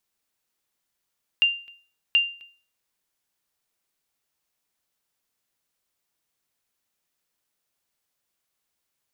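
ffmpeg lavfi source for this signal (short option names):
-f lavfi -i "aevalsrc='0.251*(sin(2*PI*2790*mod(t,0.73))*exp(-6.91*mod(t,0.73)/0.4)+0.0501*sin(2*PI*2790*max(mod(t,0.73)-0.26,0))*exp(-6.91*max(mod(t,0.73)-0.26,0)/0.4))':d=1.46:s=44100"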